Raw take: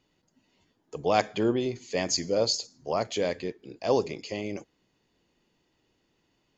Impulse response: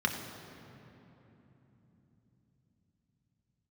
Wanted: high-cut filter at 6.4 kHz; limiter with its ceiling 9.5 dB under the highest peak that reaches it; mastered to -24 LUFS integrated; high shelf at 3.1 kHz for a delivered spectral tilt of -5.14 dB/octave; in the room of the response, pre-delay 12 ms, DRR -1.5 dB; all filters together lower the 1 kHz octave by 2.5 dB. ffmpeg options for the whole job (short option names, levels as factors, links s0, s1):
-filter_complex "[0:a]lowpass=6400,equalizer=f=1000:t=o:g=-3.5,highshelf=f=3100:g=-3.5,alimiter=limit=0.126:level=0:latency=1,asplit=2[s0][s1];[1:a]atrim=start_sample=2205,adelay=12[s2];[s1][s2]afir=irnorm=-1:irlink=0,volume=0.447[s3];[s0][s3]amix=inputs=2:normalize=0,volume=1.58"